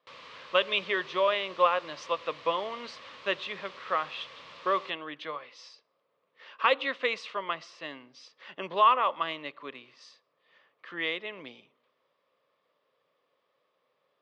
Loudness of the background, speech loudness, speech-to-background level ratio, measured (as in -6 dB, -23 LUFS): -47.5 LUFS, -29.5 LUFS, 18.0 dB